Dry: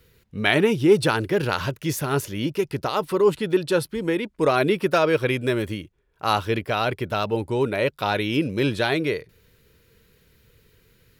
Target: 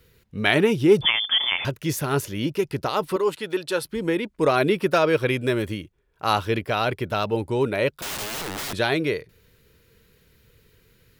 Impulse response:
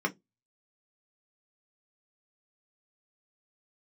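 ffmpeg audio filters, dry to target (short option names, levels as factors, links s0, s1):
-filter_complex "[0:a]asettb=1/sr,asplit=3[s0][s1][s2];[s0]atrim=end=1.014[s3];[s1]atrim=start=1.01:end=1.65,asetpts=PTS-STARTPTS,afade=t=in:d=0.004:c=qsin,afade=t=out:st=0.636:d=0.004:c=qsin,lowpass=f=3100:t=q:w=0.5098,lowpass=f=3100:t=q:w=0.6013,lowpass=f=3100:t=q:w=0.9,lowpass=f=3100:t=q:w=2.563,afreqshift=-3600[s4];[s2]atrim=start=1.646[s5];[s3][s4]acrossfade=d=0.004:c1=hsin:c2=qsin[s6];[s6][s5]acrossfade=d=0.004:c1=qsin:c2=hsin,asettb=1/sr,asplit=3[s7][s8][s9];[s7]atrim=end=3.164[s10];[s8]atrim=start=3.16:end=3.84,asetpts=PTS-STARTPTS,afade=t=in:d=0.004:c=qsin,afade=t=out:st=0.676:d=0.004:c=qsin,highpass=f=600:p=1[s11];[s9]atrim=start=3.836[s12];[s10][s11]acrossfade=d=0.004:c1=hsin:c2=qsin[s13];[s13][s12]acrossfade=d=0.004:c1=qsin:c2=hsin,asettb=1/sr,asplit=3[s14][s15][s16];[s14]atrim=end=7.924[s17];[s15]atrim=start=7.92:end=8.73,asetpts=PTS-STARTPTS,afade=t=in:d=0.004:c=qsin,afade=t=out:st=0.806:d=0.004:c=qsin,aeval=exprs='(mod(20*val(0)+1,2)-1)/20':c=same[s18];[s16]atrim=start=8.726[s19];[s17][s18]acrossfade=d=0.004:c1=hsin:c2=qsin[s20];[s20][s19]acrossfade=d=0.004:c1=qsin:c2=hsin"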